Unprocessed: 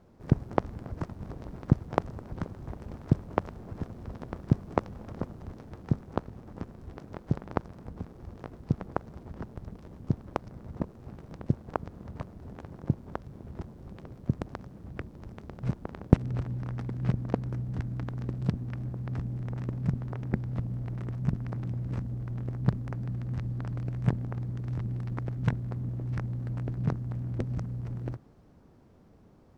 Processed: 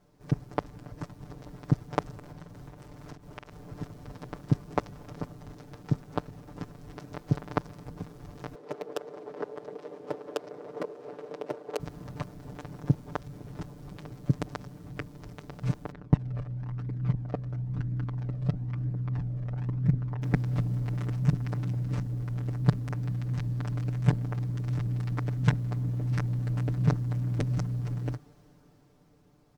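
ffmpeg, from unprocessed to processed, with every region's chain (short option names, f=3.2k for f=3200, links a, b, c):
-filter_complex "[0:a]asettb=1/sr,asplit=3[a][b][c];[a]atrim=end=2.184[d];[b]atrim=start=2.18:end=3.53,asetpts=PTS-STARTPTS,afade=t=in:d=0.004:c=qsin,afade=t=out:st=1.346:d=0.004:c=qsin,acompressor=threshold=-39dB:ratio=12:attack=3.2:release=140:knee=1:detection=peak,asplit=2[e][f];[f]adelay=48,volume=-7dB[g];[e][g]amix=inputs=2:normalize=0,atrim=end_sample=59535[h];[c]atrim=start=3.526[i];[d][h]acrossfade=d=0.004:c1=hsin:c2=qsin[j];[j][i]acrossfade=d=0.004:c1=qsin:c2=hsin,asettb=1/sr,asplit=3[k][l][m];[k]atrim=end=8.554[n];[l]atrim=start=8.55:end=11.8,asetpts=PTS-STARTPTS,afade=t=in:d=0.004:c=qsin,afade=t=out:st=3.246:d=0.004:c=qsin,aemphasis=mode=reproduction:type=75fm,volume=27dB,asoftclip=hard,volume=-27dB,highpass=f=440:t=q:w=3.1[o];[m]atrim=start=11.796[p];[n][o]acrossfade=d=0.004:c1=hsin:c2=qsin[q];[q][p]acrossfade=d=0.004:c1=qsin:c2=hsin,asettb=1/sr,asplit=3[r][s][t];[r]atrim=end=15.914[u];[s]atrim=start=15.91:end=20.22,asetpts=PTS-STARTPTS,afade=t=in:d=0.004:c=qsin,afade=t=out:st=4.306:d=0.004:c=qsin,lowpass=f=1.4k:p=1,flanger=delay=0.4:depth=1.4:regen=35:speed=1:shape=triangular[v];[t]atrim=start=20.216[w];[u][v]acrossfade=d=0.004:c1=hsin:c2=qsin[x];[x][w]acrossfade=d=0.004:c1=qsin:c2=hsin,highshelf=f=2.6k:g=9.5,aecho=1:1:6.8:0.94,dynaudnorm=f=230:g=13:m=9.5dB,volume=-7.5dB"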